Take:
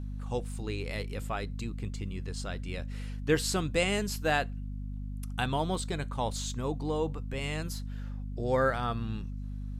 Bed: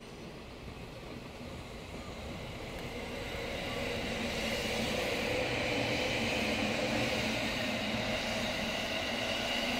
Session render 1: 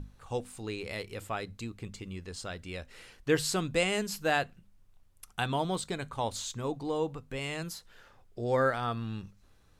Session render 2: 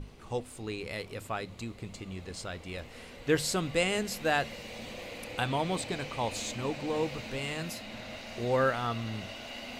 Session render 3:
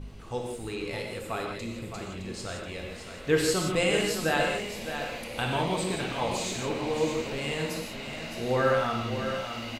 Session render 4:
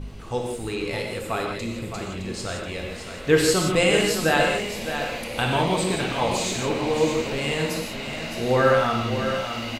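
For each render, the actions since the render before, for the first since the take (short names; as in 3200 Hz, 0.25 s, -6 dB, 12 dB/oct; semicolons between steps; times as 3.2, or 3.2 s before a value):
notches 50/100/150/200/250 Hz
add bed -9 dB
on a send: echo 0.614 s -8.5 dB; on the sum: non-linear reverb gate 0.2 s flat, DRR 0 dB
gain +6 dB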